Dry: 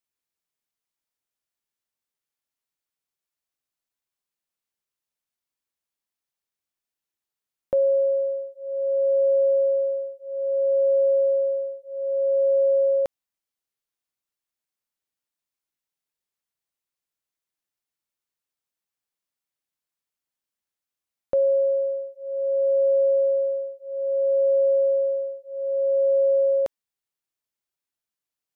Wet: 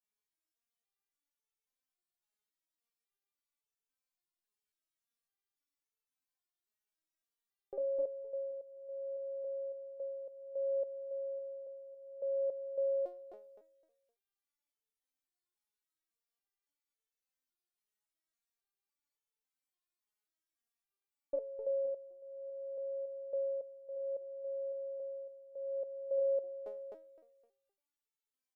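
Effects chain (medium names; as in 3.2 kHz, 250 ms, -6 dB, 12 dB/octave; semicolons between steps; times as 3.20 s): resonances exaggerated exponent 1.5; 23.95–26.18 s: high-pass 110 Hz 12 dB/octave; comb 2.6 ms, depth 32%; feedback delay 258 ms, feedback 27%, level -4 dB; resonator arpeggio 3.6 Hz 210–440 Hz; trim +5.5 dB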